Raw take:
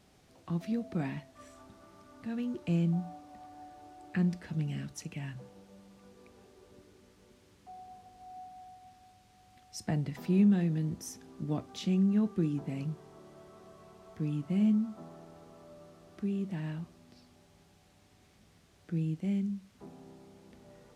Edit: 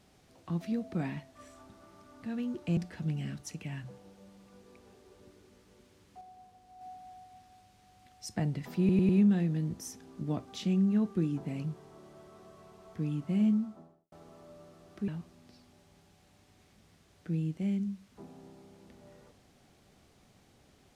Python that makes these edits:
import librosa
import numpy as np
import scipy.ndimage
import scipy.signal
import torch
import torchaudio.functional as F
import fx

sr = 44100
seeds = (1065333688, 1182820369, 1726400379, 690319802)

y = fx.studio_fade_out(x, sr, start_s=14.73, length_s=0.6)
y = fx.edit(y, sr, fx.cut(start_s=2.77, length_s=1.51),
    fx.clip_gain(start_s=7.72, length_s=0.6, db=-4.5),
    fx.stutter(start_s=10.3, slice_s=0.1, count=4),
    fx.cut(start_s=16.29, length_s=0.42), tone=tone)